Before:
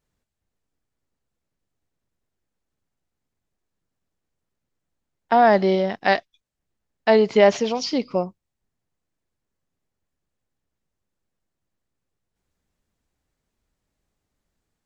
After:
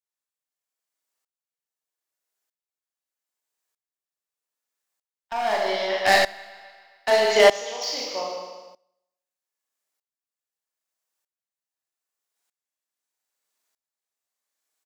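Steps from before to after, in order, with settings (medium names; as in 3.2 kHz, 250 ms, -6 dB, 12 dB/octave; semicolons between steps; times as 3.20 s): 5.66–8.17 s: backward echo that repeats 132 ms, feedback 57%, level -13.5 dB; gate -48 dBFS, range -7 dB; high-pass 730 Hz 12 dB/octave; treble shelf 5.3 kHz +11 dB; overload inside the chain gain 16.5 dB; doubling 40 ms -11.5 dB; feedback delay 153 ms, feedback 35%, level -12 dB; Schroeder reverb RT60 0.82 s, combs from 26 ms, DRR -0.5 dB; sawtooth tremolo in dB swelling 0.8 Hz, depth 19 dB; trim +5.5 dB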